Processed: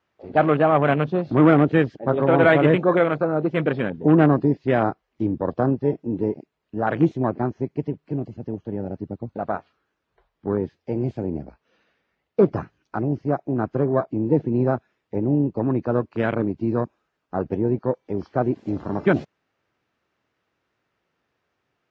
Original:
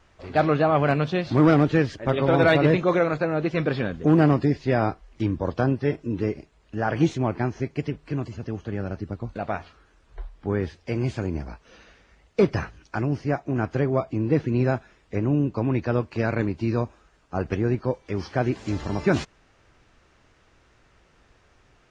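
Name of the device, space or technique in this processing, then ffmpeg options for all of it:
over-cleaned archive recording: -filter_complex "[0:a]highpass=140,lowpass=5.2k,afwtdn=0.0282,asettb=1/sr,asplit=3[a][b][c];[a]atrim=end=11.234[d];[b]atrim=start=11.23:end=12.47,asetpts=PTS-STARTPTS,afade=t=in:d=0.004:c=qsin,afade=t=out:st=1.236:d=0.004:c=qsin,lowpass=5.7k[e];[c]atrim=start=12.466[f];[d][e]acrossfade=d=0.004:c1=hsin:c2=qsin[g];[g][f]acrossfade=d=0.004:c1=qsin:c2=hsin,volume=3dB"

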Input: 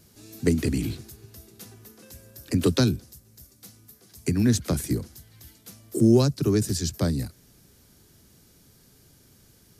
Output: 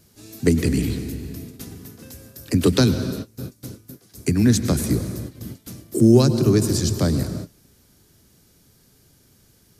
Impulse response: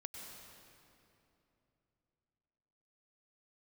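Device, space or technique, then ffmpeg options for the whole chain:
keyed gated reverb: -filter_complex "[0:a]asplit=3[a][b][c];[1:a]atrim=start_sample=2205[d];[b][d]afir=irnorm=-1:irlink=0[e];[c]apad=whole_len=431817[f];[e][f]sidechaingate=range=-33dB:threshold=-50dB:ratio=16:detection=peak,volume=2dB[g];[a][g]amix=inputs=2:normalize=0"

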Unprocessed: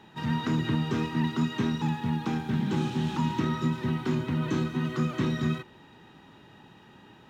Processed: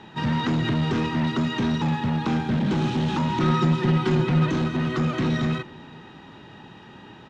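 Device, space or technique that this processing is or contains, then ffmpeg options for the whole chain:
limiter into clipper: -filter_complex "[0:a]alimiter=limit=-22dB:level=0:latency=1:release=12,asoftclip=type=hard:threshold=-27dB,lowpass=6.2k,asettb=1/sr,asplit=3[a][b][c];[a]atrim=end=3.404[d];[b]atrim=start=3.4:end=4.46,asetpts=PTS-STARTPTS,afade=t=in:d=0.004:c=qsin,afade=t=out:st=1.056:d=0.004:c=qsin,aecho=1:1:5.6:0.86,atrim=end_sample=46746[e];[c]atrim=start=4.456[f];[d][e]acrossfade=d=0.004:c1=hsin:c2=qsin[g];[g][f]acrossfade=d=0.004:c1=qsin:c2=hsin,asplit=2[h][i];[i]adelay=460.6,volume=-23dB,highshelf=f=4k:g=-10.4[j];[h][j]amix=inputs=2:normalize=0,volume=8dB"

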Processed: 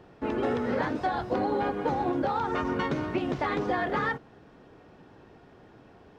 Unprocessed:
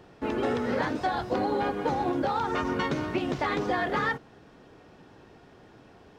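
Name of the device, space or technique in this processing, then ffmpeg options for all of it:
behind a face mask: -af "highshelf=f=3.5k:g=-8"

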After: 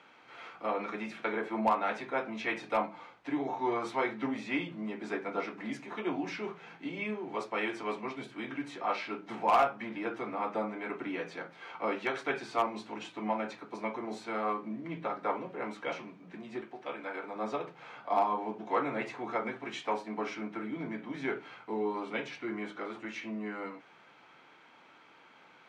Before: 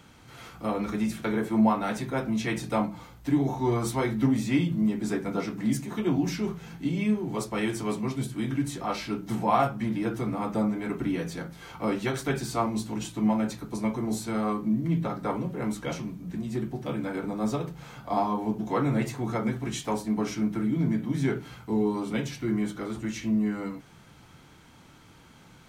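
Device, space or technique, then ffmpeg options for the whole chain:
megaphone: -filter_complex "[0:a]highpass=480,lowpass=2.8k,equalizer=f=2.4k:t=o:w=0.26:g=4,asoftclip=type=hard:threshold=-18.5dB,asettb=1/sr,asplit=3[a][b][c];[a]atrim=end=16.614[d];[b]atrim=start=16.61:end=17.36,asetpts=PTS-STARTPTS,afade=t=in:d=0.004:c=qsin,afade=t=out:st=0.746:d=0.004:c=qsin,lowshelf=f=310:g=-10.5[e];[c]atrim=start=17.356[f];[d][e]acrossfade=d=0.004:c1=hsin:c2=qsin[g];[g][f]acrossfade=d=0.004:c1=qsin:c2=hsin"

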